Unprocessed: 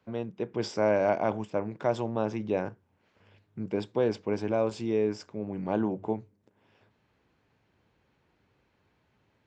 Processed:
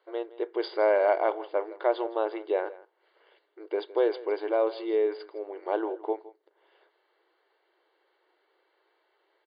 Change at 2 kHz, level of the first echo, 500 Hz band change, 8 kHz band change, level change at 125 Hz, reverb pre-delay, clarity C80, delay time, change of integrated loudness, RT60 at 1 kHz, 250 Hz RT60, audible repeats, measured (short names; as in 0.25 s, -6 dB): +2.0 dB, -18.5 dB, +2.5 dB, n/a, under -40 dB, none, none, 0.163 s, +1.5 dB, none, none, 1